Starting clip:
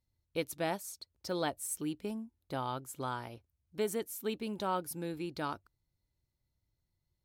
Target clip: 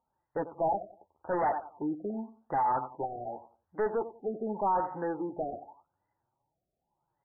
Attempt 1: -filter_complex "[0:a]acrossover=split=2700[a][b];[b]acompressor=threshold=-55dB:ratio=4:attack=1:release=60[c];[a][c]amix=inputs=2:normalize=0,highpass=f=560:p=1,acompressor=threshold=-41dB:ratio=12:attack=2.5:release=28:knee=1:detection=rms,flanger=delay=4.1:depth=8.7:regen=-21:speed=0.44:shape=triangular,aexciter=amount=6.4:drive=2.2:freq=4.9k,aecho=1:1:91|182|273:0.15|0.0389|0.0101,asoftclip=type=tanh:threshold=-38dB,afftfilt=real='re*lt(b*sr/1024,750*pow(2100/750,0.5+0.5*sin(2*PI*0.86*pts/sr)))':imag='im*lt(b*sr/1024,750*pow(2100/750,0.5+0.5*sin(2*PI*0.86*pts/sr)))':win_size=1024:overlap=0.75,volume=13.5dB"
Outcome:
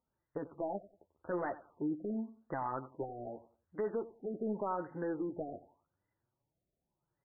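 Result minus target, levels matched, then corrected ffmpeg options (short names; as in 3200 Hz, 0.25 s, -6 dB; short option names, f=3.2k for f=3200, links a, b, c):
compressor: peak gain reduction +12.5 dB; 1000 Hz band -5.0 dB
-filter_complex "[0:a]acrossover=split=2700[a][b];[b]acompressor=threshold=-55dB:ratio=4:attack=1:release=60[c];[a][c]amix=inputs=2:normalize=0,highpass=f=560:p=1,equalizer=f=840:t=o:w=0.67:g=14,flanger=delay=4.1:depth=8.7:regen=-21:speed=0.44:shape=triangular,aexciter=amount=6.4:drive=2.2:freq=4.9k,aecho=1:1:91|182|273:0.15|0.0389|0.0101,asoftclip=type=tanh:threshold=-38dB,afftfilt=real='re*lt(b*sr/1024,750*pow(2100/750,0.5+0.5*sin(2*PI*0.86*pts/sr)))':imag='im*lt(b*sr/1024,750*pow(2100/750,0.5+0.5*sin(2*PI*0.86*pts/sr)))':win_size=1024:overlap=0.75,volume=13.5dB"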